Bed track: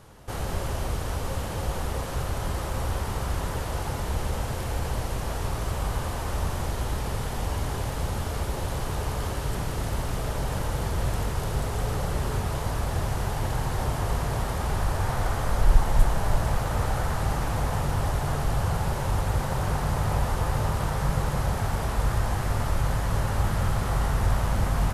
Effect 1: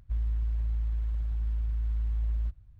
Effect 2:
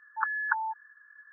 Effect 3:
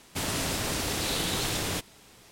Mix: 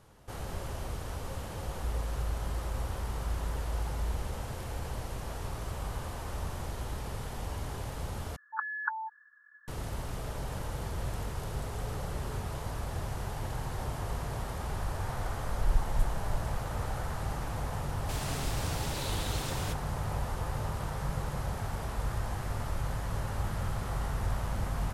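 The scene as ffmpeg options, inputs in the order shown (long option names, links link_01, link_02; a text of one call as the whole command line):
ffmpeg -i bed.wav -i cue0.wav -i cue1.wav -i cue2.wav -filter_complex "[0:a]volume=-8.5dB,asplit=2[link_01][link_02];[link_01]atrim=end=8.364[link_03];[2:a]atrim=end=1.32,asetpts=PTS-STARTPTS,volume=-5dB[link_04];[link_02]atrim=start=9.676[link_05];[1:a]atrim=end=2.79,asetpts=PTS-STARTPTS,volume=-6dB,afade=type=in:duration=0.004:curve=hsin,afade=type=out:start_time=2.786:duration=0.004:curve=hsin,adelay=1730[link_06];[3:a]atrim=end=2.31,asetpts=PTS-STARTPTS,volume=-9dB,afade=type=in:duration=0.004:curve=hsin,afade=type=out:start_time=2.306:duration=0.004:curve=hsin,adelay=17930[link_07];[link_03][link_04]acrossfade=duration=0.004:curve1=hsin:curve2=hsin[link_08];[link_08][link_05]acrossfade=duration=0.004:curve1=hsin:curve2=hsin[link_09];[link_09][link_06][link_07]amix=inputs=3:normalize=0" out.wav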